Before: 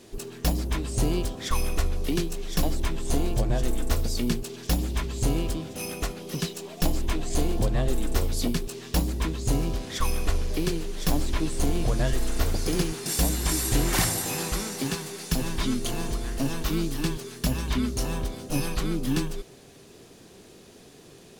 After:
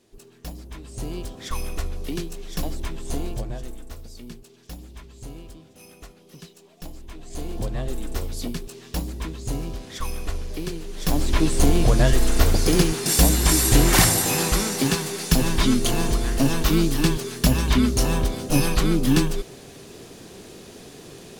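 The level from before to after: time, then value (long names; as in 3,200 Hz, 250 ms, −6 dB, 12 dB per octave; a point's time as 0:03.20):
0:00.69 −11.5 dB
0:01.39 −3 dB
0:03.29 −3 dB
0:03.91 −14 dB
0:07.08 −14 dB
0:07.60 −3.5 dB
0:10.80 −3.5 dB
0:11.41 +7.5 dB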